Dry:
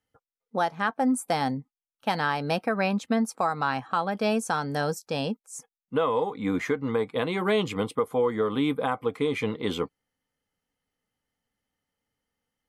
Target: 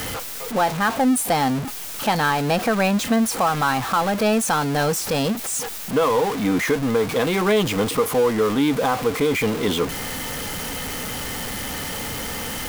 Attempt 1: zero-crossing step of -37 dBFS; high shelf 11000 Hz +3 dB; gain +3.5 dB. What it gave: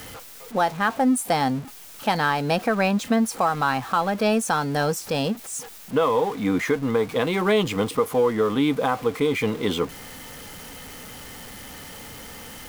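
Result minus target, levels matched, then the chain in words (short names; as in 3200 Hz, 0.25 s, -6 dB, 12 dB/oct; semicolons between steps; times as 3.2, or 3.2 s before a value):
zero-crossing step: distortion -9 dB
zero-crossing step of -26 dBFS; high shelf 11000 Hz +3 dB; gain +3.5 dB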